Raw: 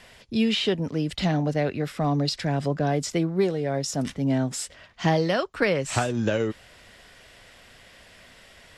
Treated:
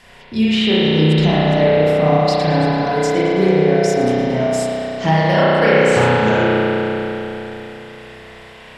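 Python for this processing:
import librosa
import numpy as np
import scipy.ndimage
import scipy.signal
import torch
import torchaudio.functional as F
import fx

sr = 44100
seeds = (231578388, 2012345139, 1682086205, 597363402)

y = fx.peak_eq(x, sr, hz=910.0, db=3.5, octaves=0.44)
y = fx.echo_feedback(y, sr, ms=110, feedback_pct=58, wet_db=-15.5)
y = fx.rev_spring(y, sr, rt60_s=3.7, pass_ms=(32,), chirp_ms=35, drr_db=-9.5)
y = y * librosa.db_to_amplitude(1.5)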